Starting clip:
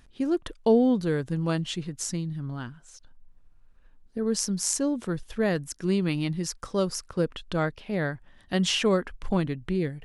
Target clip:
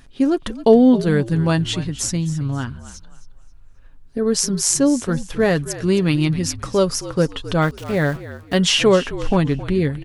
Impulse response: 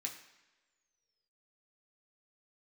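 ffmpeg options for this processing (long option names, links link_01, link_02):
-filter_complex "[0:a]aecho=1:1:7.3:0.34,asplit=3[link_01][link_02][link_03];[link_01]afade=type=out:start_time=7.61:duration=0.02[link_04];[link_02]aeval=exprs='val(0)*gte(abs(val(0)),0.00891)':channel_layout=same,afade=type=in:start_time=7.61:duration=0.02,afade=type=out:start_time=8.57:duration=0.02[link_05];[link_03]afade=type=in:start_time=8.57:duration=0.02[link_06];[link_04][link_05][link_06]amix=inputs=3:normalize=0,asplit=4[link_07][link_08][link_09][link_10];[link_08]adelay=267,afreqshift=-52,volume=-15dB[link_11];[link_09]adelay=534,afreqshift=-104,volume=-24.9dB[link_12];[link_10]adelay=801,afreqshift=-156,volume=-34.8dB[link_13];[link_07][link_11][link_12][link_13]amix=inputs=4:normalize=0,volume=8.5dB"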